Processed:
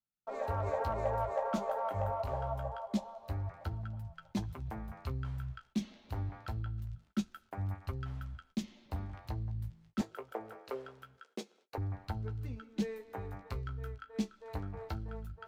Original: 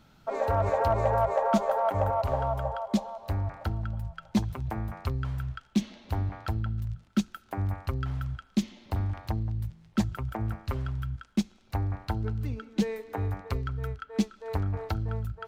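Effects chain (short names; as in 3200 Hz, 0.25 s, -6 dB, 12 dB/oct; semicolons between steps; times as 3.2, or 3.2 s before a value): flange 0.25 Hz, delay 9.8 ms, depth 9.3 ms, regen -36%; gate -56 dBFS, range -36 dB; 10.01–11.78 resonant high-pass 450 Hz, resonance Q 4.9; gain -4.5 dB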